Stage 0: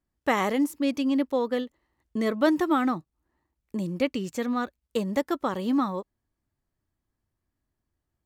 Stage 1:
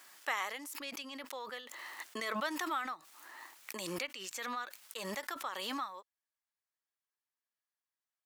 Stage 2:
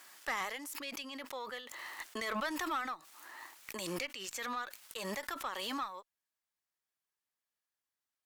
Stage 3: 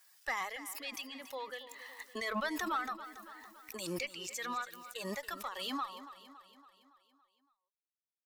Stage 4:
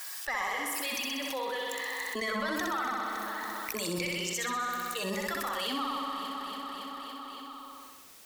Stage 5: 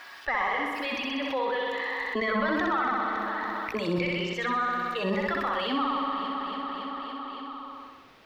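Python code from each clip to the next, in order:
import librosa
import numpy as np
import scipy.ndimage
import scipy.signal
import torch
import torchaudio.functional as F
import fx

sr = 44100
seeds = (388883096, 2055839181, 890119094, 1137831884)

y1 = scipy.signal.sosfilt(scipy.signal.butter(2, 1200.0, 'highpass', fs=sr, output='sos'), x)
y1 = fx.pre_swell(y1, sr, db_per_s=22.0)
y1 = F.gain(torch.from_numpy(y1), -6.0).numpy()
y2 = fx.tube_stage(y1, sr, drive_db=29.0, bias=0.3)
y2 = F.gain(torch.from_numpy(y2), 2.0).numpy()
y3 = fx.bin_expand(y2, sr, power=1.5)
y3 = fx.echo_feedback(y3, sr, ms=281, feedback_pct=55, wet_db=-14)
y3 = F.gain(torch.from_numpy(y3), 2.5).numpy()
y4 = fx.room_flutter(y3, sr, wall_m=10.8, rt60_s=1.1)
y4 = fx.env_flatten(y4, sr, amount_pct=70)
y5 = fx.air_absorb(y4, sr, metres=340.0)
y5 = F.gain(torch.from_numpy(y5), 7.5).numpy()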